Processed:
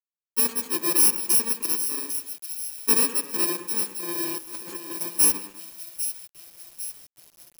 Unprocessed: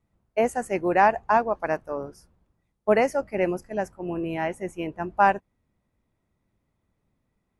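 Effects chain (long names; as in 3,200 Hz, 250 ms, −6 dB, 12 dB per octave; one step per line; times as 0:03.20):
samples in bit-reversed order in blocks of 64 samples
high-pass filter 240 Hz 24 dB per octave
echo with a time of its own for lows and highs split 2,700 Hz, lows 102 ms, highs 799 ms, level −10 dB
0:04.38–0:05.01: compressor whose output falls as the input rises −37 dBFS, ratio −1
bit reduction 8 bits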